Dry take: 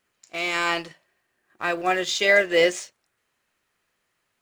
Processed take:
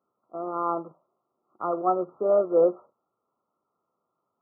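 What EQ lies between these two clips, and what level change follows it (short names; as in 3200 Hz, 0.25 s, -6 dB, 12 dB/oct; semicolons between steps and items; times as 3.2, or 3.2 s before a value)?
HPF 170 Hz 12 dB/oct; brick-wall FIR low-pass 1400 Hz; 0.0 dB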